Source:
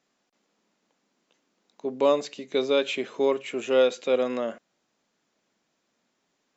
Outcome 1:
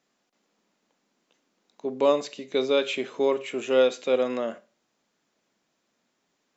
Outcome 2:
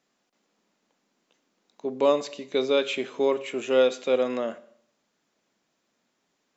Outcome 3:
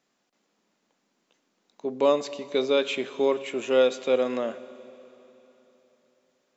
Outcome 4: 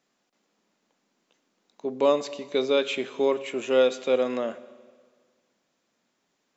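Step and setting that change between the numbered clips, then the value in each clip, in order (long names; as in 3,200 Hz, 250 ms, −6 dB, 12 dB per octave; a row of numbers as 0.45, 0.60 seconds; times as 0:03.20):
four-comb reverb, RT60: 0.31, 0.66, 3.5, 1.7 seconds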